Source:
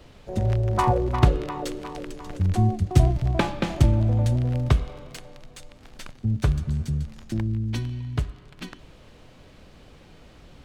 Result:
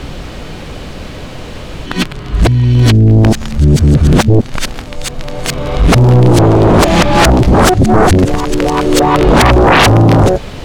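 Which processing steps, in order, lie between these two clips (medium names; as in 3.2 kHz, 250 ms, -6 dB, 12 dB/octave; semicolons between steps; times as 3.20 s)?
reverse the whole clip; sine folder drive 20 dB, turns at -3 dBFS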